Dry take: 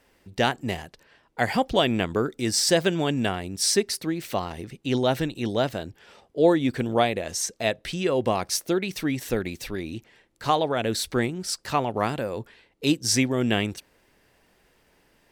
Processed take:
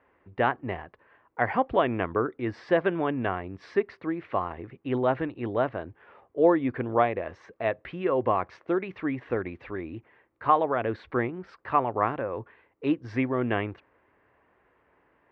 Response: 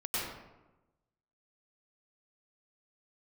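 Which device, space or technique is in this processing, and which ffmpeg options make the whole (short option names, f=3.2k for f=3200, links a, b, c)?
bass cabinet: -af "highpass=74,equalizer=f=150:t=q:w=4:g=-7,equalizer=f=210:t=q:w=4:g=-7,equalizer=f=1.1k:t=q:w=4:g=7,lowpass=f=2.1k:w=0.5412,lowpass=f=2.1k:w=1.3066,volume=-1.5dB"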